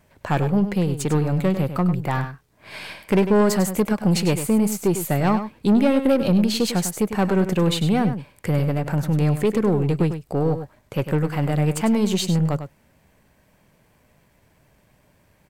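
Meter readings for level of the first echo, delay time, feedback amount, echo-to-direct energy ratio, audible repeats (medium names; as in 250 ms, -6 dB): -10.0 dB, 100 ms, no regular repeats, -10.0 dB, 1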